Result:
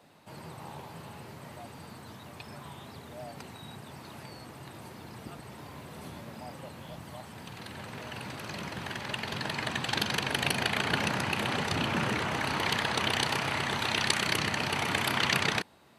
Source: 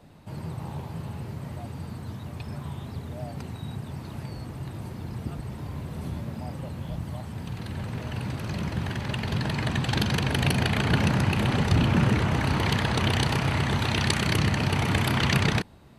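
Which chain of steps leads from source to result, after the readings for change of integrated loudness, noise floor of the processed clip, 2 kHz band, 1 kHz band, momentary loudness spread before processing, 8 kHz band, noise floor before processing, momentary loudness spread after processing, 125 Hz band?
-2.0 dB, -48 dBFS, -0.5 dB, -1.5 dB, 14 LU, 0.0 dB, -40 dBFS, 18 LU, -14.0 dB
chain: high-pass 600 Hz 6 dB/octave

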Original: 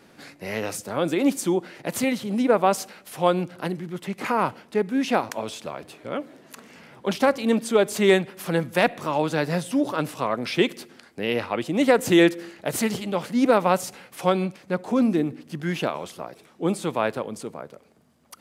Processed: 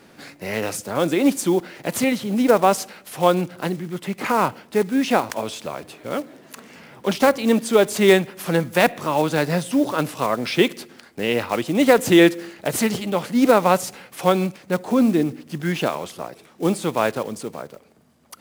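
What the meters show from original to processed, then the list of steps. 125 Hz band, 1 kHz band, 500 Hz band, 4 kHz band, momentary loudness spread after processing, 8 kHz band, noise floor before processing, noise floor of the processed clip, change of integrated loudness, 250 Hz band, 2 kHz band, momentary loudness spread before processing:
+3.5 dB, +3.5 dB, +3.5 dB, +4.0 dB, 14 LU, +4.5 dB, -55 dBFS, -51 dBFS, +3.5 dB, +3.5 dB, +3.5 dB, 14 LU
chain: block-companded coder 5-bit; trim +3.5 dB

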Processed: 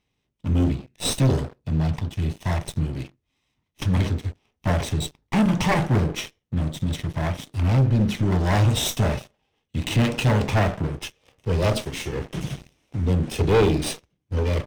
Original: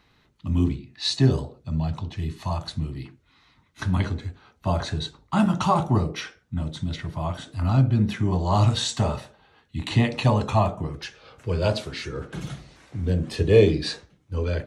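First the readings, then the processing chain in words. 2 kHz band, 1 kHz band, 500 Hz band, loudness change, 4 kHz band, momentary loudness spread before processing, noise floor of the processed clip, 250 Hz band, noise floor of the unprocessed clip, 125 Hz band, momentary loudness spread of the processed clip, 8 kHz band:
+4.0 dB, -1.5 dB, -0.5 dB, +1.0 dB, 0.0 dB, 15 LU, -77 dBFS, +1.5 dB, -63 dBFS, +1.5 dB, 12 LU, +6.0 dB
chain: comb filter that takes the minimum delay 0.35 ms; waveshaping leveller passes 3; trim -7 dB

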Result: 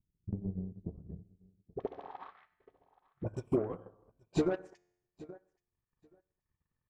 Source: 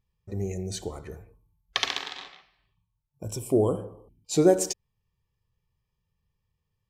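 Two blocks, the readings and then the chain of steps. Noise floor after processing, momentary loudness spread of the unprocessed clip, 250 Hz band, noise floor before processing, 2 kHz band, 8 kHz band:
under -85 dBFS, 21 LU, -8.0 dB, -80 dBFS, -16.0 dB, -26.5 dB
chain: treble shelf 9.5 kHz +12 dB; hum notches 50/100/150/200 Hz; low-pass sweep 190 Hz -> 1.6 kHz, 1.50–2.38 s; in parallel at +2.5 dB: compression, threshold -32 dBFS, peak gain reduction 17.5 dB; on the sum: feedback comb 89 Hz, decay 0.91 s, harmonics all, mix 50%; on a send: feedback delay 827 ms, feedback 15%, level -22.5 dB; on the sum: AM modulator 220 Hz, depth 30%; saturation -20 dBFS, distortion -15 dB; phase dispersion highs, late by 46 ms, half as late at 640 Hz; transient shaper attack +11 dB, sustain -9 dB; trim -8 dB

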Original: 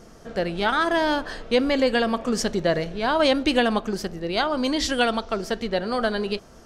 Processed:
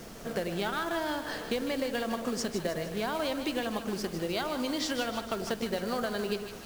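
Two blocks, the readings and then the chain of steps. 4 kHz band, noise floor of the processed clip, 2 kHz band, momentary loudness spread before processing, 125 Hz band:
-9.0 dB, -43 dBFS, -10.0 dB, 8 LU, -6.5 dB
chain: high-pass 110 Hz 24 dB/octave; compression 12:1, threshold -30 dBFS, peak gain reduction 15.5 dB; short-mantissa float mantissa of 2-bit; added noise pink -51 dBFS; on a send: two-band feedback delay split 730 Hz, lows 100 ms, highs 154 ms, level -9 dB; on the sum: trim +1 dB

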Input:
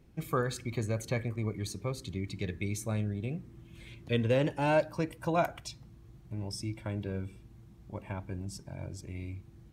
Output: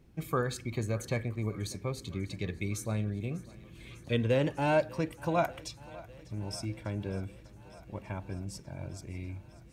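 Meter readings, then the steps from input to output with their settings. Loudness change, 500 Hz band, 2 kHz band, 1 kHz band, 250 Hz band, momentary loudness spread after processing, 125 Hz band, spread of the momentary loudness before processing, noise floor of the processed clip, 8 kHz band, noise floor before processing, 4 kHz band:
0.0 dB, 0.0 dB, 0.0 dB, 0.0 dB, 0.0 dB, 18 LU, 0.0 dB, 17 LU, -53 dBFS, 0.0 dB, -55 dBFS, 0.0 dB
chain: thinning echo 596 ms, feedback 78%, high-pass 230 Hz, level -20.5 dB

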